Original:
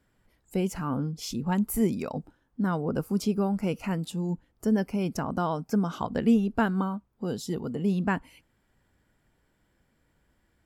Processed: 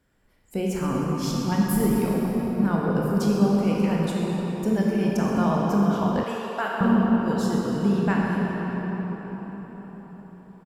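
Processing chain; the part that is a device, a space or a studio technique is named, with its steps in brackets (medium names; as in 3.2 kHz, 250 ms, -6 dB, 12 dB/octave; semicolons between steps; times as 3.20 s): cathedral (reverberation RT60 5.3 s, pre-delay 19 ms, DRR -4 dB); 6.23–6.81 s: high-pass 630 Hz 12 dB/octave; feedback delay 127 ms, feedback 56%, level -17.5 dB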